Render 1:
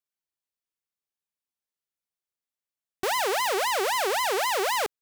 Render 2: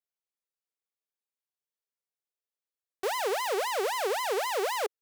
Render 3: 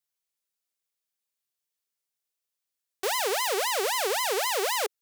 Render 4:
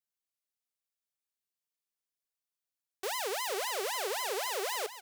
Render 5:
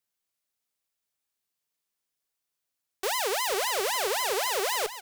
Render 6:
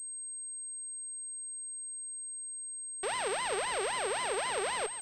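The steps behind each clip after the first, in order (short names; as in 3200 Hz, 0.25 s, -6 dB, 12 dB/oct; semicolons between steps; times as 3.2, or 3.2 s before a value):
resonant low shelf 320 Hz -10 dB, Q 3; gain -6.5 dB
high shelf 2200 Hz +9 dB
feedback echo 0.461 s, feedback 17%, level -12 dB; gain -7.5 dB
one diode to ground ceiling -30.5 dBFS; gain +7 dB
pulse-width modulation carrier 8400 Hz; gain -4.5 dB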